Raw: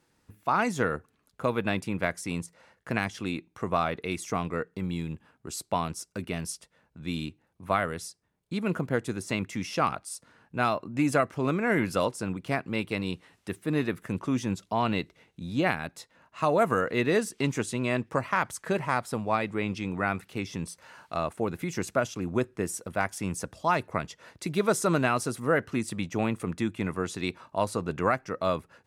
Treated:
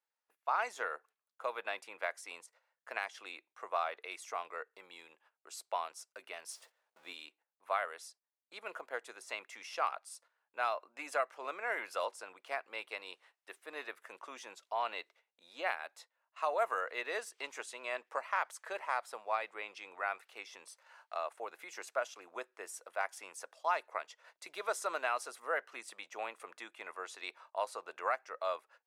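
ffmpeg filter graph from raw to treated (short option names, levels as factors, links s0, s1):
-filter_complex "[0:a]asettb=1/sr,asplit=3[s0][s1][s2];[s0]atrim=end=6.484[s3];[s1]atrim=start=6.48:end=7.13,asetpts=PTS-STARTPTS,afade=t=in:d=0.004:c=qsin,afade=t=out:st=0.646:d=0.004:c=qsin,aeval=exprs='val(0)+0.5*0.00501*sgn(val(0))':c=same,agate=range=0.0224:threshold=0.00501:ratio=3:release=100:detection=peak,lowshelf=f=480:g=6.5[s4];[s2]atrim=start=7.126[s5];[s3][s4]acrossfade=d=0.004:c1=hsin:c2=qsin[s6];[s6][s5]acrossfade=d=0.004:c1=qsin:c2=hsin,agate=range=0.2:threshold=0.00316:ratio=16:detection=peak,highpass=f=580:w=0.5412,highpass=f=580:w=1.3066,highshelf=f=4800:g=-6,volume=0.473"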